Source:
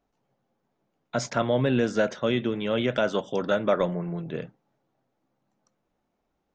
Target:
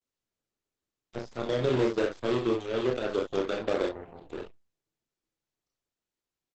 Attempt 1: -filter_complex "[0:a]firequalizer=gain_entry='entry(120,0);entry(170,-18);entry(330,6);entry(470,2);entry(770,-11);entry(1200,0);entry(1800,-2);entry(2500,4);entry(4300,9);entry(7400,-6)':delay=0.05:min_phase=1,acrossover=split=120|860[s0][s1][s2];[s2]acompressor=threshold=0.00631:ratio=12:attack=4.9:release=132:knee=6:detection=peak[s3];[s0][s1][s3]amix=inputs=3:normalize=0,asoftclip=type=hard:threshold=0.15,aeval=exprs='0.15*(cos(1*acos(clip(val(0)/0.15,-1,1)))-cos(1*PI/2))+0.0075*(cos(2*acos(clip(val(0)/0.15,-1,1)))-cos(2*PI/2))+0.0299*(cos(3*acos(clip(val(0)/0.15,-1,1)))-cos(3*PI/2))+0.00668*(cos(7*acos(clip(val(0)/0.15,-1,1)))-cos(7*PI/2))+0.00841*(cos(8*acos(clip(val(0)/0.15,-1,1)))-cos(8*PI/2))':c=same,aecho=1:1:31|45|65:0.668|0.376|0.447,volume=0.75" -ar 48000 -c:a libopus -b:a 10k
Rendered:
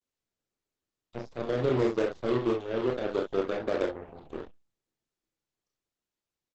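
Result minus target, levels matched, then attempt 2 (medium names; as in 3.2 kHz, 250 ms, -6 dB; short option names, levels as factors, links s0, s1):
compression: peak gain reduction +7 dB
-filter_complex "[0:a]firequalizer=gain_entry='entry(120,0);entry(170,-18);entry(330,6);entry(470,2);entry(770,-11);entry(1200,0);entry(1800,-2);entry(2500,4);entry(4300,9);entry(7400,-6)':delay=0.05:min_phase=1,acrossover=split=120|860[s0][s1][s2];[s2]acompressor=threshold=0.015:ratio=12:attack=4.9:release=132:knee=6:detection=peak[s3];[s0][s1][s3]amix=inputs=3:normalize=0,asoftclip=type=hard:threshold=0.15,aeval=exprs='0.15*(cos(1*acos(clip(val(0)/0.15,-1,1)))-cos(1*PI/2))+0.0075*(cos(2*acos(clip(val(0)/0.15,-1,1)))-cos(2*PI/2))+0.0299*(cos(3*acos(clip(val(0)/0.15,-1,1)))-cos(3*PI/2))+0.00668*(cos(7*acos(clip(val(0)/0.15,-1,1)))-cos(7*PI/2))+0.00841*(cos(8*acos(clip(val(0)/0.15,-1,1)))-cos(8*PI/2))':c=same,aecho=1:1:31|45|65:0.668|0.376|0.447,volume=0.75" -ar 48000 -c:a libopus -b:a 10k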